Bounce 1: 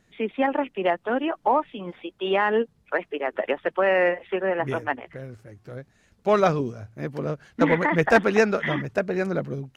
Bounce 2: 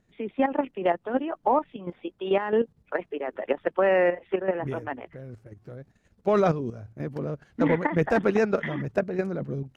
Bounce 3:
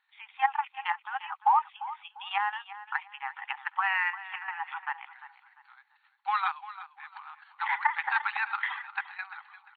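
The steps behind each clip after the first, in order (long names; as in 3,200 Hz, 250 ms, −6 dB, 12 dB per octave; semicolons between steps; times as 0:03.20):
tilt shelving filter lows +4 dB; output level in coarse steps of 10 dB
linear-phase brick-wall band-pass 770–4,500 Hz; repeating echo 347 ms, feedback 31%, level −15 dB; level +3 dB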